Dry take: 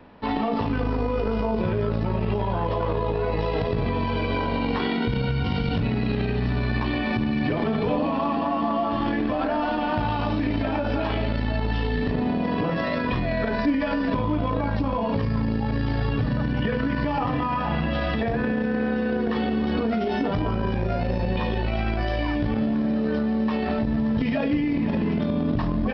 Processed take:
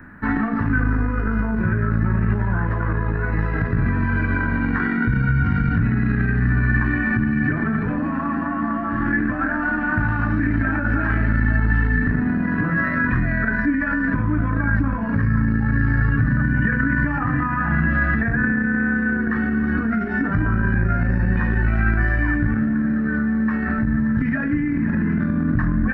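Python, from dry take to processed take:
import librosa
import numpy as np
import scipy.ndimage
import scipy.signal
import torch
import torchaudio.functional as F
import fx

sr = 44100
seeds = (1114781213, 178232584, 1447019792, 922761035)

y = fx.peak_eq(x, sr, hz=3300.0, db=-9.5, octaves=0.27)
y = fx.rider(y, sr, range_db=10, speed_s=0.5)
y = fx.curve_eq(y, sr, hz=(140.0, 320.0, 470.0, 960.0, 1600.0, 2700.0, 5100.0, 7600.0), db=(0, -4, -17, -11, 10, -16, -25, 5))
y = y * librosa.db_to_amplitude(6.5)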